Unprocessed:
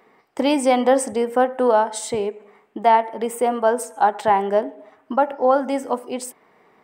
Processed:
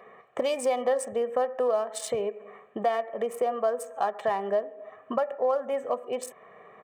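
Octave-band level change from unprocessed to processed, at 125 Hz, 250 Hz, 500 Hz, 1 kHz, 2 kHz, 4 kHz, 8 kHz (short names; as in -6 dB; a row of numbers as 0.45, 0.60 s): n/a, -15.0 dB, -6.5 dB, -11.5 dB, -10.0 dB, -9.0 dB, -8.5 dB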